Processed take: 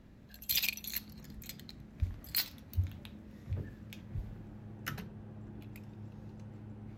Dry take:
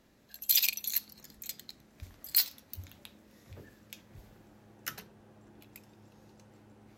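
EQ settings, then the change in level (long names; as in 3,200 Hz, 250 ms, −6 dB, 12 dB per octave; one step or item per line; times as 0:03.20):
bass and treble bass +13 dB, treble −9 dB
+1.0 dB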